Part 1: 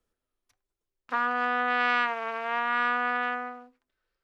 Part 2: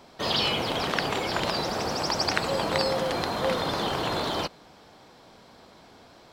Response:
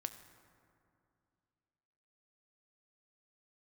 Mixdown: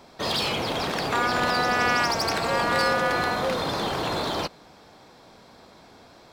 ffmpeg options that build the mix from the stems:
-filter_complex "[0:a]volume=1.5dB[link_01];[1:a]bandreject=frequency=3000:width=16,asoftclip=type=hard:threshold=-23dB,volume=1.5dB[link_02];[link_01][link_02]amix=inputs=2:normalize=0"

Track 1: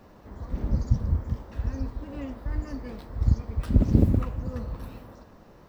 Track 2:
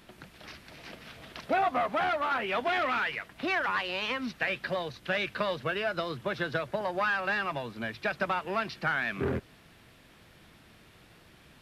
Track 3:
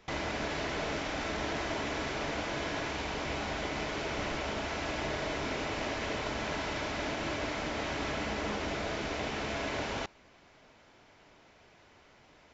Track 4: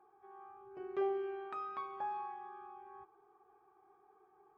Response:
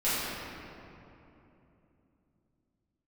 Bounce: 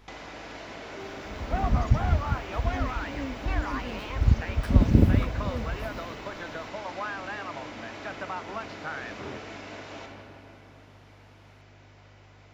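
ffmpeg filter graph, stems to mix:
-filter_complex "[0:a]adelay=1000,volume=1dB[link_01];[1:a]equalizer=frequency=930:width_type=o:width=1.2:gain=9,volume=-11.5dB[link_02];[2:a]highpass=frequency=180:poles=1,acompressor=threshold=-42dB:ratio=6,aeval=exprs='val(0)+0.00178*(sin(2*PI*50*n/s)+sin(2*PI*2*50*n/s)/2+sin(2*PI*3*50*n/s)/3+sin(2*PI*4*50*n/s)/4+sin(2*PI*5*50*n/s)/5)':channel_layout=same,volume=-2.5dB,asplit=2[link_03][link_04];[link_04]volume=-9dB[link_05];[3:a]volume=-11dB[link_06];[4:a]atrim=start_sample=2205[link_07];[link_05][link_07]afir=irnorm=-1:irlink=0[link_08];[link_01][link_02][link_03][link_06][link_08]amix=inputs=5:normalize=0"

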